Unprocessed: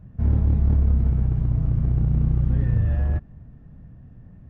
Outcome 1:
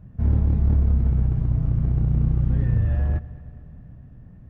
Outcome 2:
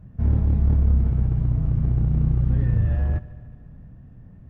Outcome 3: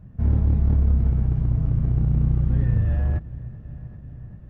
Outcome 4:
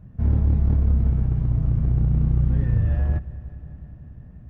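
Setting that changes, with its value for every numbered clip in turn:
multi-head delay, time: 109 ms, 73 ms, 389 ms, 181 ms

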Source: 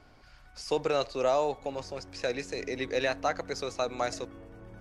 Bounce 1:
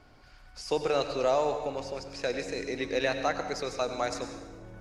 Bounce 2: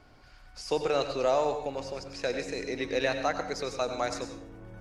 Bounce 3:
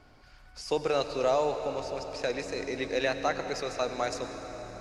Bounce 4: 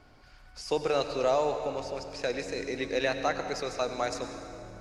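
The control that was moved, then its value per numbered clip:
plate-style reverb, RT60: 1.1 s, 0.52 s, 5.1 s, 2.3 s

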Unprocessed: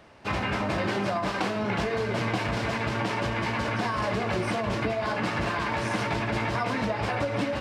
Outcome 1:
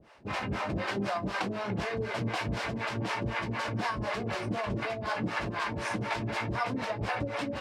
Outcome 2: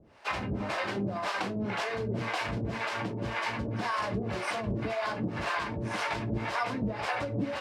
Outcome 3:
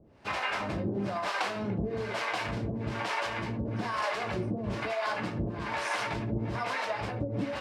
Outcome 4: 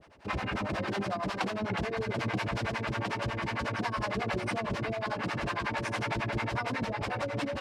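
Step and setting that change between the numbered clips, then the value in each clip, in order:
harmonic tremolo, rate: 4 Hz, 1.9 Hz, 1.1 Hz, 11 Hz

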